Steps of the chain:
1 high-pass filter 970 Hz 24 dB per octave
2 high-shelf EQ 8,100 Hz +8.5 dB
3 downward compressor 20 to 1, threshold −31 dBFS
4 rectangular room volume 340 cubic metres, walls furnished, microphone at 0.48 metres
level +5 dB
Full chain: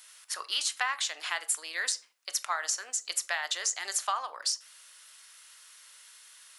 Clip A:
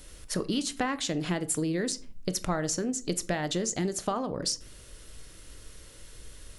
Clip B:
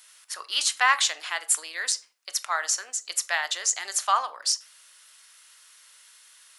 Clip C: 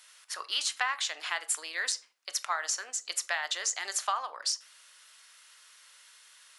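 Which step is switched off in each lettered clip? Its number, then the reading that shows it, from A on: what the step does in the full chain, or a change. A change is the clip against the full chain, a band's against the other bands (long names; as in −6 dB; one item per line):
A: 1, 500 Hz band +17.0 dB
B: 3, average gain reduction 2.0 dB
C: 2, 8 kHz band −1.5 dB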